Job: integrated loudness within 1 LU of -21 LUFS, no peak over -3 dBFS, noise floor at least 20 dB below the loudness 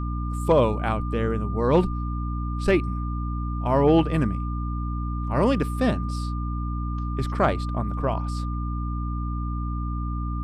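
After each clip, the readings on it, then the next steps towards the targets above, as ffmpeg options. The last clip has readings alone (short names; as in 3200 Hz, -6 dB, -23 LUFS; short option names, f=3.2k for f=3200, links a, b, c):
hum 60 Hz; harmonics up to 300 Hz; hum level -25 dBFS; steady tone 1200 Hz; tone level -36 dBFS; loudness -25.5 LUFS; peak -8.0 dBFS; loudness target -21.0 LUFS
-> -af "bandreject=f=60:t=h:w=4,bandreject=f=120:t=h:w=4,bandreject=f=180:t=h:w=4,bandreject=f=240:t=h:w=4,bandreject=f=300:t=h:w=4"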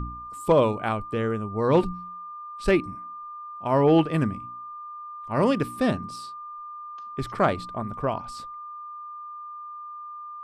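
hum none; steady tone 1200 Hz; tone level -36 dBFS
-> -af "bandreject=f=1.2k:w=30"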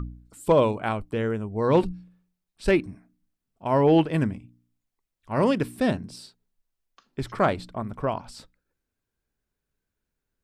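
steady tone none; loudness -25.0 LUFS; peak -9.5 dBFS; loudness target -21.0 LUFS
-> -af "volume=4dB"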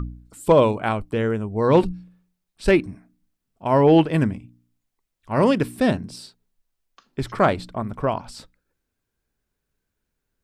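loudness -21.0 LUFS; peak -5.5 dBFS; noise floor -80 dBFS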